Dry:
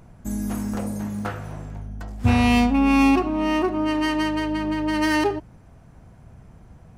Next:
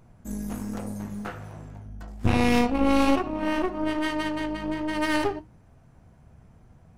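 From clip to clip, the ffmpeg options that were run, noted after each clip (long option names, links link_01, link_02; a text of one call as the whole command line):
ffmpeg -i in.wav -af "flanger=delay=7.7:depth=6.8:regen=-56:speed=1.2:shape=sinusoidal,aeval=exprs='0.299*(cos(1*acos(clip(val(0)/0.299,-1,1)))-cos(1*PI/2))+0.0944*(cos(4*acos(clip(val(0)/0.299,-1,1)))-cos(4*PI/2))+0.0106*(cos(6*acos(clip(val(0)/0.299,-1,1)))-cos(6*PI/2))':channel_layout=same,volume=-2dB" out.wav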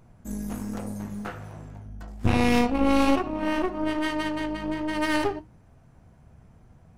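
ffmpeg -i in.wav -af anull out.wav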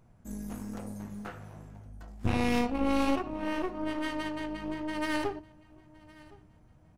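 ffmpeg -i in.wav -af "aecho=1:1:1064|2128:0.0708|0.0219,volume=-6.5dB" out.wav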